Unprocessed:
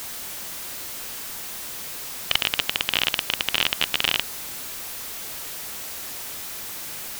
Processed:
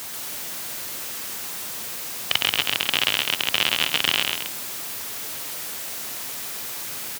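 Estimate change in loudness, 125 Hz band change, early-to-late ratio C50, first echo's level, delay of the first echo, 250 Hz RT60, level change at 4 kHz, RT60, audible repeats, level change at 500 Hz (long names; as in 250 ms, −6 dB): +2.0 dB, +1.0 dB, no reverb audible, −17.0 dB, 58 ms, no reverb audible, +2.0 dB, no reverb audible, 3, +2.0 dB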